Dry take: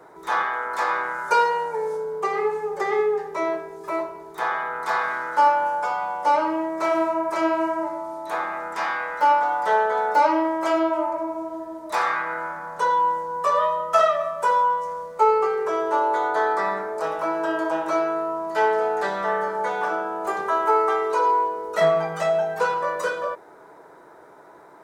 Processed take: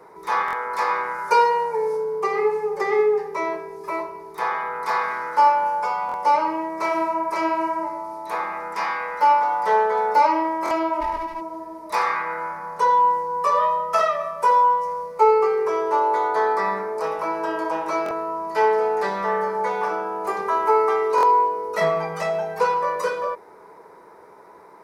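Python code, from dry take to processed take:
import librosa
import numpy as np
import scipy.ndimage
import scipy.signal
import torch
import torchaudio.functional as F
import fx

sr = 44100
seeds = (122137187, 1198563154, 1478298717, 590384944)

y = fx.lower_of_two(x, sr, delay_ms=1.1, at=(11.0, 11.4), fade=0.02)
y = fx.ripple_eq(y, sr, per_octave=0.86, db=7)
y = fx.buffer_glitch(y, sr, at_s=(0.46, 6.07, 10.64, 18.04, 21.16), block=1024, repeats=2)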